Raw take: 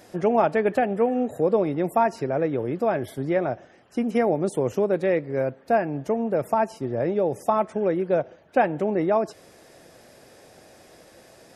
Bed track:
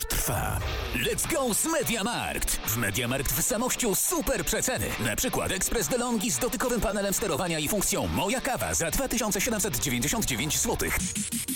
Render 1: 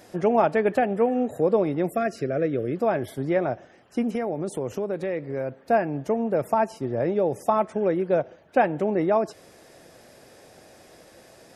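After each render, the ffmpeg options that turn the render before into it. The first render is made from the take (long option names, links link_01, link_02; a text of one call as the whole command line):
ffmpeg -i in.wav -filter_complex "[0:a]asettb=1/sr,asplit=3[link_01][link_02][link_03];[link_01]atrim=end=1.904[link_04];[link_02]atrim=start=1.9:end=2.76,asetpts=PTS-STARTPTS,afade=type=in:duration=0.004:curve=qsin,afade=type=out:start_time=0.856:duration=0.004:curve=qsin,asuperstop=centerf=910:order=4:qfactor=1.6[link_05];[link_03]atrim=start=2.756[link_06];[link_04][link_05]acrossfade=duration=0.004:curve1=hsin:curve2=qsin[link_07];[link_07][link_06]acrossfade=duration=0.004:curve1=qsin:curve2=hsin,asettb=1/sr,asplit=3[link_08][link_09][link_10];[link_08]atrim=end=4.154[link_11];[link_09]atrim=start=4.15:end=5.57,asetpts=PTS-STARTPTS,afade=type=in:duration=0.004:curve=qsin,afade=type=out:start_time=1.416:duration=0.004:curve=qsin,acompressor=threshold=-26dB:ratio=2.5:attack=3.2:release=140:knee=1:detection=peak[link_12];[link_10]atrim=start=5.566[link_13];[link_11][link_12]acrossfade=duration=0.004:curve1=hsin:curve2=qsin[link_14];[link_14][link_13]acrossfade=duration=0.004:curve1=qsin:curve2=hsin" out.wav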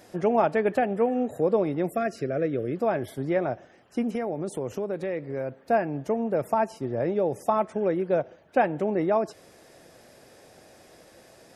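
ffmpeg -i in.wav -af "volume=-2dB" out.wav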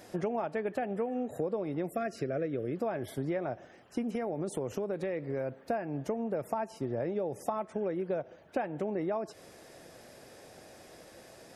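ffmpeg -i in.wav -af "acompressor=threshold=-30dB:ratio=6" out.wav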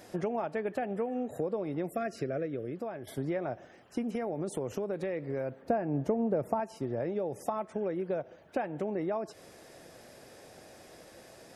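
ffmpeg -i in.wav -filter_complex "[0:a]asettb=1/sr,asplit=3[link_01][link_02][link_03];[link_01]atrim=end=5.624[link_04];[link_02]atrim=start=5.62:end=6.6,asetpts=PTS-STARTPTS,afade=type=in:duration=0.004:curve=qsin,afade=type=out:start_time=0.976:duration=0.004:curve=qsin,tiltshelf=frequency=1200:gain=5.5[link_05];[link_03]atrim=start=6.596[link_06];[link_04][link_05]acrossfade=duration=0.004:curve1=hsin:curve2=qsin[link_07];[link_07][link_06]acrossfade=duration=0.004:curve1=qsin:curve2=hsin,asplit=2[link_08][link_09];[link_08]atrim=end=3.07,asetpts=PTS-STARTPTS,afade=type=out:start_time=2.26:duration=0.81:silence=0.421697[link_10];[link_09]atrim=start=3.07,asetpts=PTS-STARTPTS,afade=type=in:duration=0.004:curve=hsin:silence=0.421697[link_11];[link_10][link_11]concat=n=2:v=0:a=1" out.wav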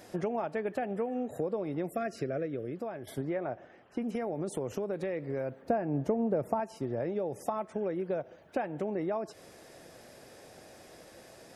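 ffmpeg -i in.wav -filter_complex "[0:a]asettb=1/sr,asplit=3[link_01][link_02][link_03];[link_01]atrim=end=3.214[link_04];[link_02]atrim=start=3.21:end=4.02,asetpts=PTS-STARTPTS,afade=type=in:duration=0.004:curve=qsin,afade=type=out:start_time=0.806:duration=0.004:curve=qsin,bass=frequency=250:gain=-3,treble=frequency=4000:gain=-13[link_05];[link_03]atrim=start=4.016[link_06];[link_04][link_05]acrossfade=duration=0.004:curve1=hsin:curve2=qsin[link_07];[link_07][link_06]acrossfade=duration=0.004:curve1=qsin:curve2=hsin" out.wav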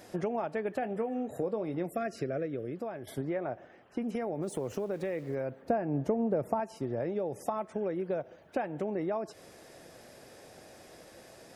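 ffmpeg -i in.wav -filter_complex "[0:a]asettb=1/sr,asplit=3[link_01][link_02][link_03];[link_01]atrim=end=0.804[link_04];[link_02]atrim=start=0.8:end=1.86,asetpts=PTS-STARTPTS,afade=type=in:duration=0.004:curve=qsin,afade=type=out:start_time=1.056:duration=0.004:curve=qsin,asplit=2[link_05][link_06];[link_06]adelay=23,volume=-12dB[link_07];[link_05][link_07]amix=inputs=2:normalize=0,atrim=end_sample=46746[link_08];[link_03]atrim=start=1.856[link_09];[link_04][link_08]acrossfade=duration=0.004:curve1=hsin:curve2=qsin[link_10];[link_10][link_09]acrossfade=duration=0.004:curve1=qsin:curve2=hsin,asplit=3[link_11][link_12][link_13];[link_11]afade=type=out:start_time=4.41:duration=0.02[link_14];[link_12]aeval=exprs='val(0)*gte(abs(val(0)),0.00211)':channel_layout=same,afade=type=in:start_time=4.41:duration=0.02,afade=type=out:start_time=5.34:duration=0.02[link_15];[link_13]afade=type=in:start_time=5.34:duration=0.02[link_16];[link_14][link_15][link_16]amix=inputs=3:normalize=0" out.wav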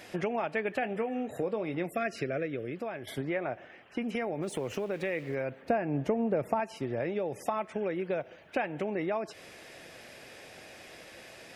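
ffmpeg -i in.wav -af "equalizer=frequency=2500:width=1:gain=12" out.wav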